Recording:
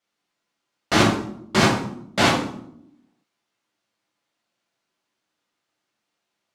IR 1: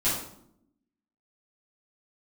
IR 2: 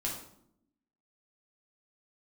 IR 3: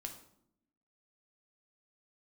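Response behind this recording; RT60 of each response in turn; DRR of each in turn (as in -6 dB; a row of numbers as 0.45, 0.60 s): 2; 0.70, 0.70, 0.70 s; -11.5, -3.0, 3.5 dB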